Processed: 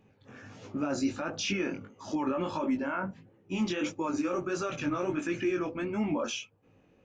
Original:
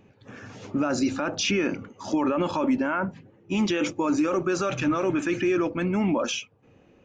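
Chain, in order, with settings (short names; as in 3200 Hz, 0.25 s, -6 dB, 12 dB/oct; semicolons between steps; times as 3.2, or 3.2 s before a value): chorus 1.5 Hz, delay 18 ms, depth 4.5 ms; gain -3.5 dB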